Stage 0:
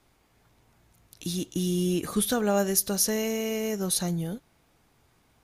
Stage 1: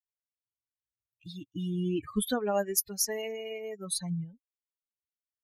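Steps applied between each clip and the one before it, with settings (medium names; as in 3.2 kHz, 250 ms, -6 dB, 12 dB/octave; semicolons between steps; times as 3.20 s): expander on every frequency bin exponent 3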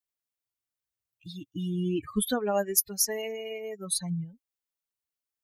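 treble shelf 9.9 kHz +4.5 dB; trim +1.5 dB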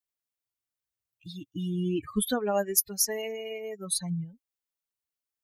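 no audible change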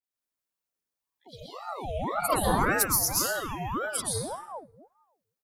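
three bands offset in time mids, highs, lows 30/70 ms, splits 180/2700 Hz; plate-style reverb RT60 0.98 s, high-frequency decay 0.6×, pre-delay 105 ms, DRR -5 dB; ring modulator with a swept carrier 670 Hz, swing 60%, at 1.8 Hz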